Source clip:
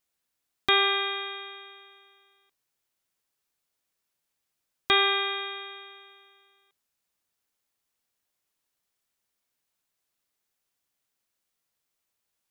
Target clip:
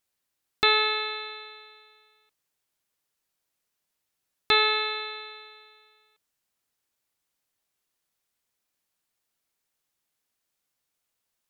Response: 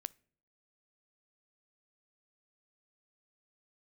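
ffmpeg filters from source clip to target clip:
-af "asetrate=48000,aresample=44100,volume=1.12"

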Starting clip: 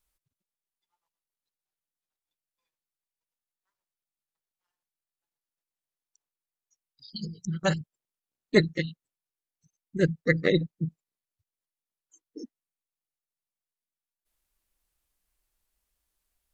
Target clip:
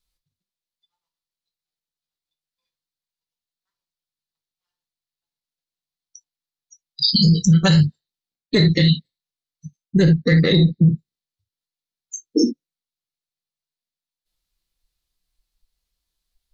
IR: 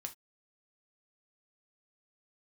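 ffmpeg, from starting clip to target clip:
-filter_complex "[1:a]atrim=start_sample=2205,atrim=end_sample=3528[s0];[0:a][s0]afir=irnorm=-1:irlink=0,asplit=2[s1][s2];[s2]asoftclip=type=tanh:threshold=0.0447,volume=0.398[s3];[s1][s3]amix=inputs=2:normalize=0,equalizer=f=4200:t=o:w=0.97:g=12.5,afftdn=nr=28:nf=-53,lowshelf=f=290:g=8,areverse,acompressor=threshold=0.0447:ratio=20,areverse,alimiter=level_in=33.5:limit=0.891:release=50:level=0:latency=1,volume=0.473"

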